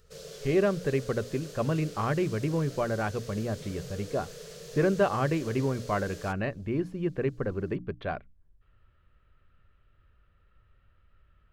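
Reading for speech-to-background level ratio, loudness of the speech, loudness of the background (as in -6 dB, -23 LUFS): 13.5 dB, -30.5 LUFS, -44.0 LUFS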